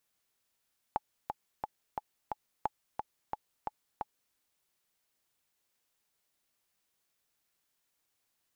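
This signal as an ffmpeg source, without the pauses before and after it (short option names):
-f lavfi -i "aevalsrc='pow(10,(-16.5-5*gte(mod(t,5*60/177),60/177))/20)*sin(2*PI*850*mod(t,60/177))*exp(-6.91*mod(t,60/177)/0.03)':d=3.38:s=44100"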